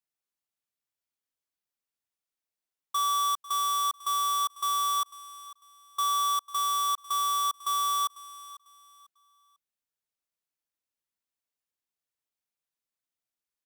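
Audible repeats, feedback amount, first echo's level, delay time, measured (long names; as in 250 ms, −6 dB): 2, 29%, −17.5 dB, 497 ms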